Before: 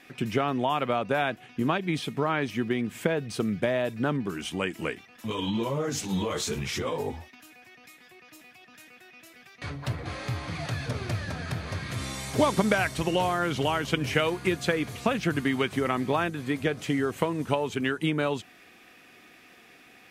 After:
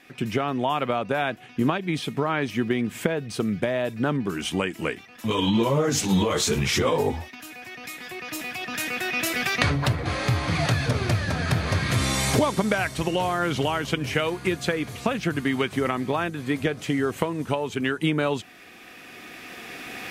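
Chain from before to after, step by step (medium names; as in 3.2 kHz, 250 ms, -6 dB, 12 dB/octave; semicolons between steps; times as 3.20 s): recorder AGC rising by 8.4 dB/s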